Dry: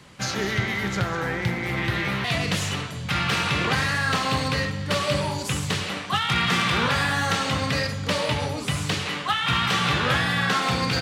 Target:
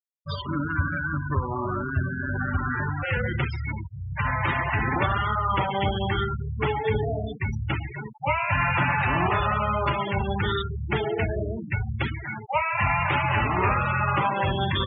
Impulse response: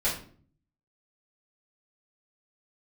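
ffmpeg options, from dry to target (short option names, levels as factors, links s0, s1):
-af "afftfilt=real='re*gte(hypot(re,im),0.0891)':imag='im*gte(hypot(re,im),0.0891)':win_size=1024:overlap=0.75,asetrate=32667,aresample=44100"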